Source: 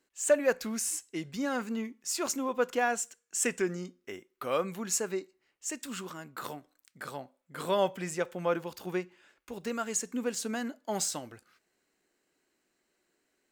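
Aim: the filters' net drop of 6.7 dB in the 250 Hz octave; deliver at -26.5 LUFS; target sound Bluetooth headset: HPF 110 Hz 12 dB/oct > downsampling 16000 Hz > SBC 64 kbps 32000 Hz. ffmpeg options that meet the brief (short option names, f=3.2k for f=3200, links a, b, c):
-af "highpass=110,equalizer=f=250:t=o:g=-8.5,aresample=16000,aresample=44100,volume=8dB" -ar 32000 -c:a sbc -b:a 64k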